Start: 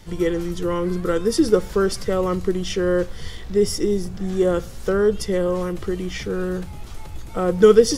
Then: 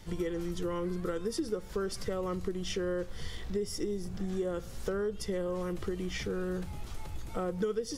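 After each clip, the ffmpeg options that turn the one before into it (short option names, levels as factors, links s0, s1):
-af "acompressor=threshold=0.0562:ratio=6,volume=0.531"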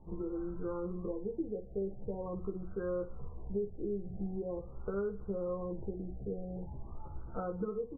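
-filter_complex "[0:a]asplit=2[s0][s1];[s1]aecho=0:1:15|56:0.668|0.266[s2];[s0][s2]amix=inputs=2:normalize=0,afftfilt=real='re*lt(b*sr/1024,790*pow(1600/790,0.5+0.5*sin(2*PI*0.44*pts/sr)))':imag='im*lt(b*sr/1024,790*pow(1600/790,0.5+0.5*sin(2*PI*0.44*pts/sr)))':win_size=1024:overlap=0.75,volume=0.531"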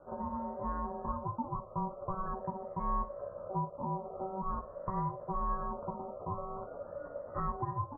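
-af "lowpass=f=680:t=q:w=3.8,aeval=exprs='val(0)*sin(2*PI*570*n/s)':c=same"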